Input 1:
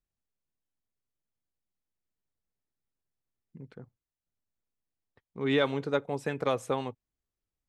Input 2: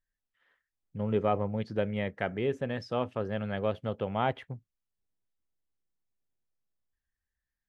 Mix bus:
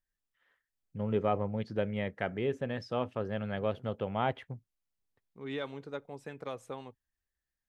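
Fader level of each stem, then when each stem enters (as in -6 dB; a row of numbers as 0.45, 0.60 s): -11.5, -2.0 dB; 0.00, 0.00 s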